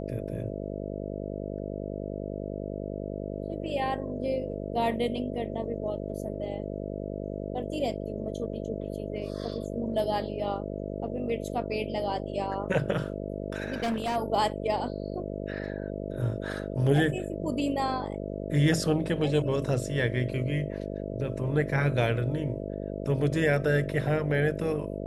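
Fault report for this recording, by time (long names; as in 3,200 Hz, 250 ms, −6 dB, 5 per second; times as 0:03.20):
mains buzz 50 Hz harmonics 13 −35 dBFS
0:13.68–0:14.17: clipping −25.5 dBFS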